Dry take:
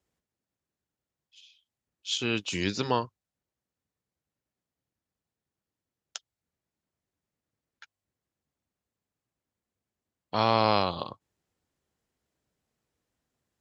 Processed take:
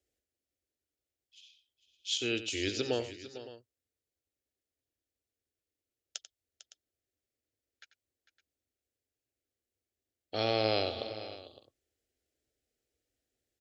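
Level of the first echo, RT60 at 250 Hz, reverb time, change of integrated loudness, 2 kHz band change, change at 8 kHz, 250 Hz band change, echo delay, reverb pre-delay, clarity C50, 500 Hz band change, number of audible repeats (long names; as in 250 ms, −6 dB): −13.0 dB, no reverb audible, no reverb audible, −5.5 dB, −4.0 dB, −1.5 dB, −5.5 dB, 91 ms, no reverb audible, no reverb audible, −2.5 dB, 3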